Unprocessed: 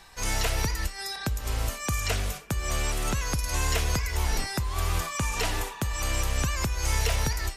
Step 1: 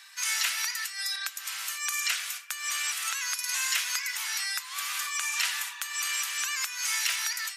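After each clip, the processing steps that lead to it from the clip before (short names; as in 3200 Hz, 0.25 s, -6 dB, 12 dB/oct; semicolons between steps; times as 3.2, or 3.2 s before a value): HPF 1400 Hz 24 dB/oct; gain +3.5 dB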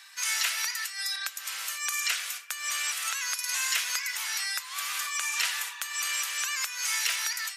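bell 490 Hz +11 dB 0.53 oct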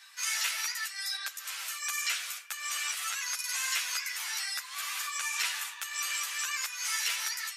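ensemble effect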